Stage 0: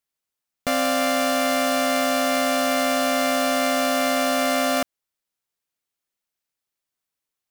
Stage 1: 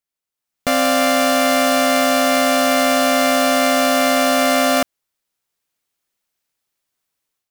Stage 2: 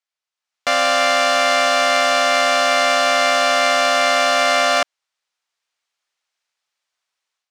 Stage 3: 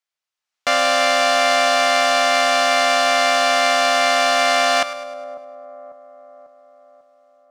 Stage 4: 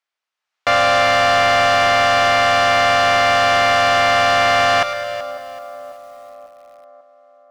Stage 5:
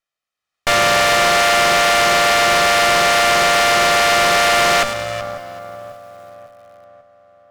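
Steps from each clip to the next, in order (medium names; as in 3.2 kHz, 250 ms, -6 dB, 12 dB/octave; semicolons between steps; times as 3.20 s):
level rider gain up to 10.5 dB; trim -3 dB
three-band isolator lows -19 dB, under 590 Hz, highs -24 dB, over 7.4 kHz; trim +3 dB
two-band feedback delay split 940 Hz, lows 545 ms, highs 103 ms, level -13.5 dB
overdrive pedal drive 16 dB, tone 1.9 kHz, clips at -1 dBFS; bit-crushed delay 379 ms, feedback 35%, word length 6-bit, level -13.5 dB; trim -2 dB
comb filter that takes the minimum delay 1.6 ms; Chebyshev shaper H 6 -11 dB, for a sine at -5.5 dBFS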